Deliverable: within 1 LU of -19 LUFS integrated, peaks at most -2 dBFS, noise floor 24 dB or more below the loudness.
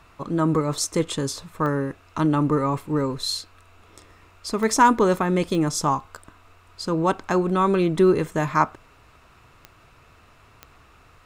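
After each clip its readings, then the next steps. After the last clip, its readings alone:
clicks found 5; loudness -22.5 LUFS; peak level -4.5 dBFS; loudness target -19.0 LUFS
-> de-click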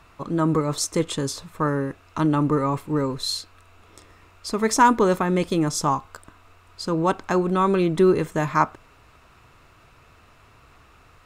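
clicks found 0; loudness -22.5 LUFS; peak level -4.5 dBFS; loudness target -19.0 LUFS
-> trim +3.5 dB; peak limiter -2 dBFS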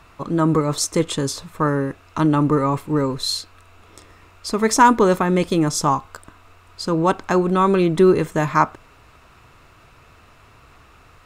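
loudness -19.0 LUFS; peak level -2.0 dBFS; noise floor -51 dBFS

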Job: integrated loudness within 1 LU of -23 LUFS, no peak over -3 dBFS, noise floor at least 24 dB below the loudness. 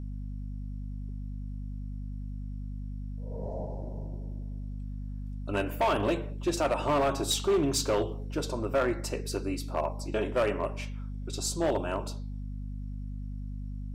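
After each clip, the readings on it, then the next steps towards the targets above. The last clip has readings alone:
clipped samples 1.0%; clipping level -21.0 dBFS; hum 50 Hz; highest harmonic 250 Hz; hum level -34 dBFS; loudness -32.5 LUFS; peak level -21.0 dBFS; loudness target -23.0 LUFS
-> clip repair -21 dBFS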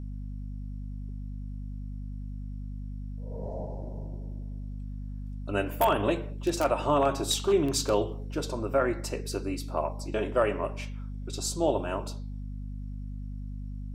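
clipped samples 0.0%; hum 50 Hz; highest harmonic 250 Hz; hum level -34 dBFS
-> de-hum 50 Hz, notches 5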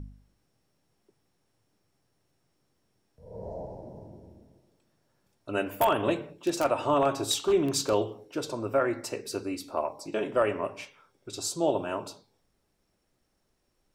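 hum not found; loudness -29.0 LUFS; peak level -11.0 dBFS; loudness target -23.0 LUFS
-> trim +6 dB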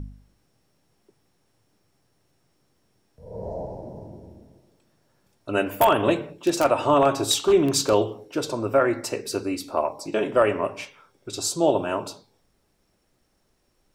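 loudness -23.0 LUFS; peak level -5.0 dBFS; noise floor -69 dBFS

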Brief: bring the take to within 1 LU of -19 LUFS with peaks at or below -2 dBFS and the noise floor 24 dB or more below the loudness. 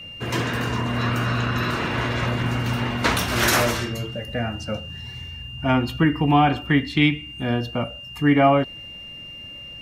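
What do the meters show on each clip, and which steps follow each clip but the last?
steady tone 2.8 kHz; tone level -36 dBFS; loudness -22.0 LUFS; peak level -5.5 dBFS; loudness target -19.0 LUFS
-> band-stop 2.8 kHz, Q 30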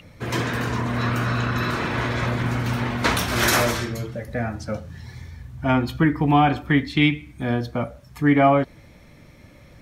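steady tone not found; loudness -22.5 LUFS; peak level -6.0 dBFS; loudness target -19.0 LUFS
-> trim +3.5 dB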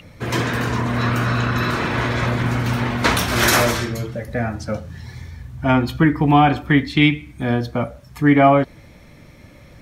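loudness -19.0 LUFS; peak level -2.0 dBFS; noise floor -45 dBFS

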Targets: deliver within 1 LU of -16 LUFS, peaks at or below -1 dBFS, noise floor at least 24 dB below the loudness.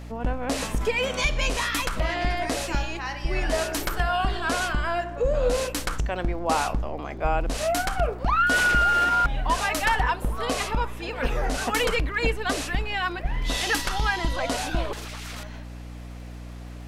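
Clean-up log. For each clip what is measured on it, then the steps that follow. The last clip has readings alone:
tick rate 43 per s; hum 60 Hz; highest harmonic 300 Hz; hum level -35 dBFS; loudness -25.5 LUFS; peak level -9.0 dBFS; loudness target -16.0 LUFS
-> de-click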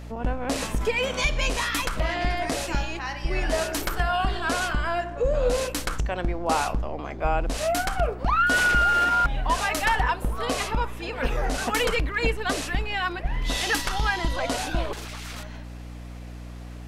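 tick rate 0.12 per s; hum 60 Hz; highest harmonic 300 Hz; hum level -35 dBFS
-> de-hum 60 Hz, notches 5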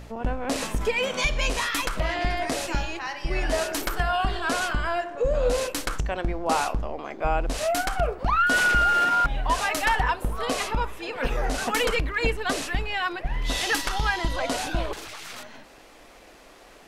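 hum not found; loudness -25.5 LUFS; peak level -9.5 dBFS; loudness target -16.0 LUFS
-> trim +9.5 dB; peak limiter -1 dBFS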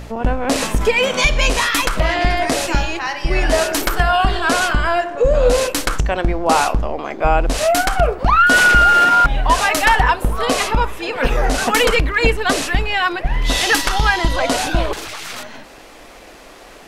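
loudness -16.0 LUFS; peak level -1.0 dBFS; noise floor -40 dBFS

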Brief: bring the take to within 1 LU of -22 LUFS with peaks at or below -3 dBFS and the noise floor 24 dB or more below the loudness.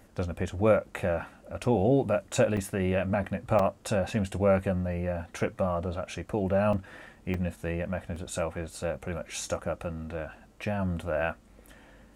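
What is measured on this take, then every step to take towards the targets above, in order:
dropouts 5; longest dropout 3.5 ms; loudness -29.5 LUFS; peak level -11.0 dBFS; loudness target -22.0 LUFS
-> interpolate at 2.57/3.59/6.73/7.34/8.16 s, 3.5 ms; trim +7.5 dB

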